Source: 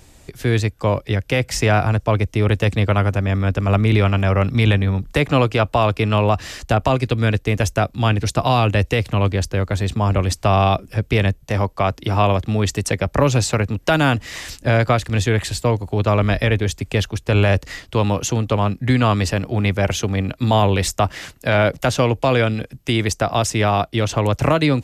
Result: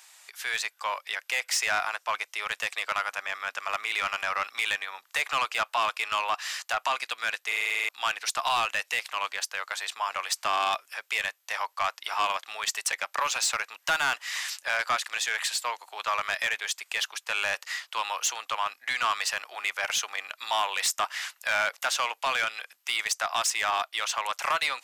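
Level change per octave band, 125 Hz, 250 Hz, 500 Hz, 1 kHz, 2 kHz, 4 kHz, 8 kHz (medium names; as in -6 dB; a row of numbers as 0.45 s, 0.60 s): under -40 dB, -35.0 dB, -19.5 dB, -6.5 dB, -2.5 dB, -2.5 dB, -1.5 dB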